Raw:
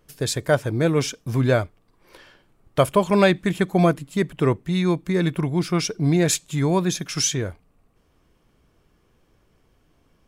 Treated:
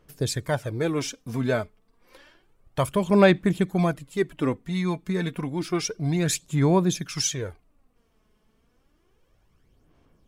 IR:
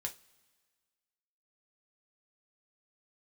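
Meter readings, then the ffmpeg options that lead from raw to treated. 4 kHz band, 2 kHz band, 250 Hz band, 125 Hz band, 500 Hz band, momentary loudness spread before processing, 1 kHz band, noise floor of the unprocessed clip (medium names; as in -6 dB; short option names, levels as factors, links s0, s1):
-4.0 dB, -3.5 dB, -2.5 dB, -4.0 dB, -3.5 dB, 7 LU, -4.0 dB, -63 dBFS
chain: -af "aphaser=in_gain=1:out_gain=1:delay=4.7:decay=0.51:speed=0.3:type=sinusoidal,volume=0.531"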